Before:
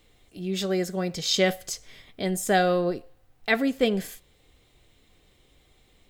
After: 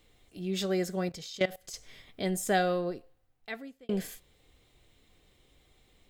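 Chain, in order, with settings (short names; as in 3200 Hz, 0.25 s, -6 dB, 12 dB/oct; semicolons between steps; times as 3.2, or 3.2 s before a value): 1.09–1.74 level quantiser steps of 20 dB; 2.3–3.89 fade out; gain -3.5 dB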